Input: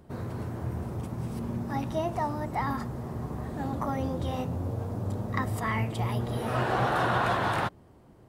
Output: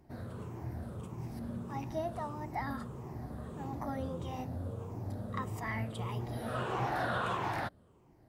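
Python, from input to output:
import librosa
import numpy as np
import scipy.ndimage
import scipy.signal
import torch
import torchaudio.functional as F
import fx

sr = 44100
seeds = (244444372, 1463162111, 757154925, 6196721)

y = fx.spec_ripple(x, sr, per_octave=0.73, drift_hz=-1.6, depth_db=8)
y = y * librosa.db_to_amplitude(-8.5)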